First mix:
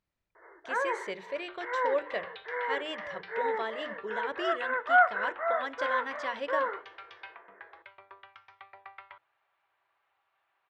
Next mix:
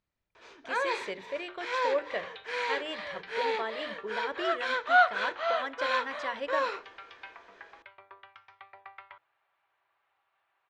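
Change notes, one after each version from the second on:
first sound: remove brick-wall FIR band-pass 310–2200 Hz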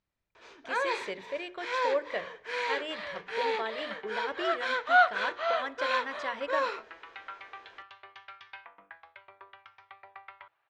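second sound: entry +1.30 s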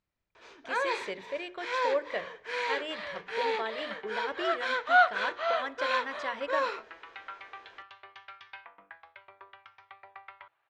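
no change

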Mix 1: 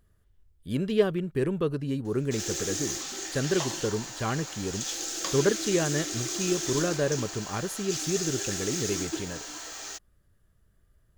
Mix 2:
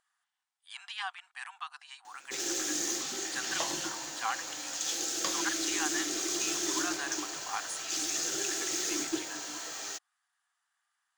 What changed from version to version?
speech: add brick-wall FIR band-pass 700–10000 Hz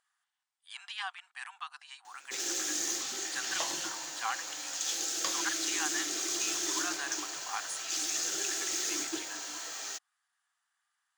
master: add bass shelf 430 Hz -8.5 dB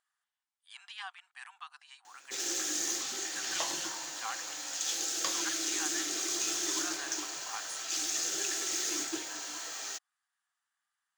speech -5.0 dB

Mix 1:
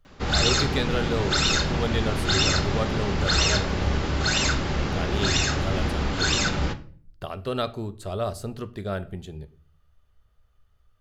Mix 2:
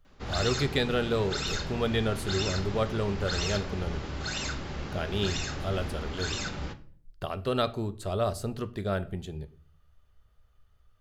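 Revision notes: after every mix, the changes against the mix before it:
background -10.5 dB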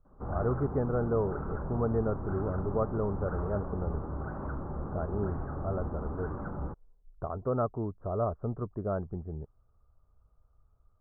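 speech: send off; master: add steep low-pass 1.3 kHz 48 dB/octave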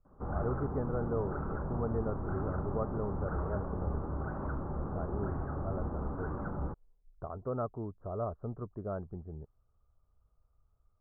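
speech -5.5 dB

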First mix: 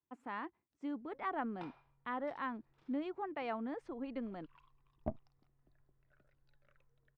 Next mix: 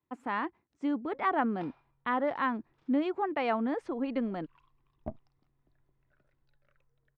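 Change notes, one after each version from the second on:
speech +10.0 dB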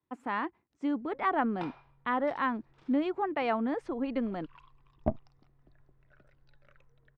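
background +9.5 dB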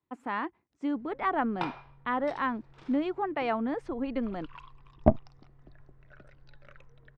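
background +8.5 dB

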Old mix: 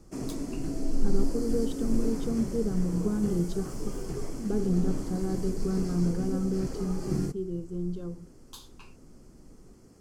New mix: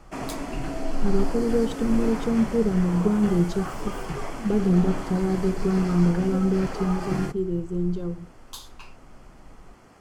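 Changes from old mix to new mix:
speech +7.0 dB; background: add high-order bell 1.5 kHz +14.5 dB 2.9 oct

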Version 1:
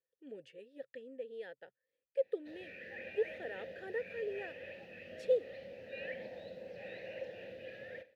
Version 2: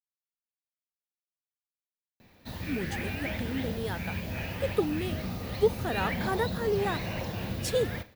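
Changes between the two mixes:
speech: entry +2.45 s; master: remove vowel filter e

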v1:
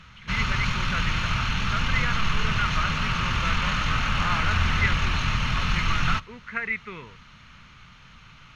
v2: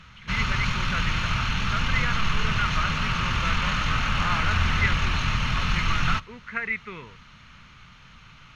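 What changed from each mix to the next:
no change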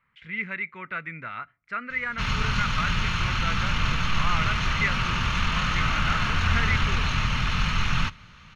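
background: entry +1.90 s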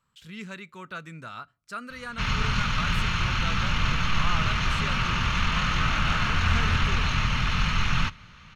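speech: remove resonant low-pass 2.1 kHz, resonance Q 7.8

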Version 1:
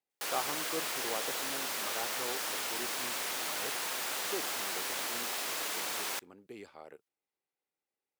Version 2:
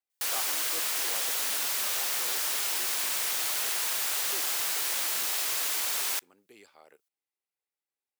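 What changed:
speech -5.0 dB; master: add tilt EQ +2.5 dB/octave

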